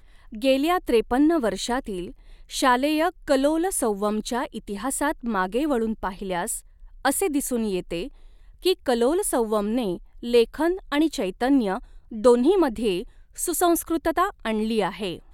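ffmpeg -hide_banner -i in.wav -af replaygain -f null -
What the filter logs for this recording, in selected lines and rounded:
track_gain = +3.0 dB
track_peak = 0.418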